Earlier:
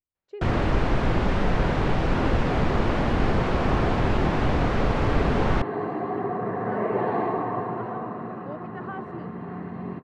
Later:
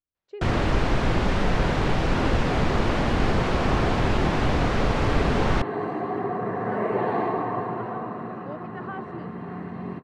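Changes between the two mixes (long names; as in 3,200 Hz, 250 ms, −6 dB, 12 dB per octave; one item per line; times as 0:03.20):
speech: add high-frequency loss of the air 65 metres
master: add high-shelf EQ 3,400 Hz +8 dB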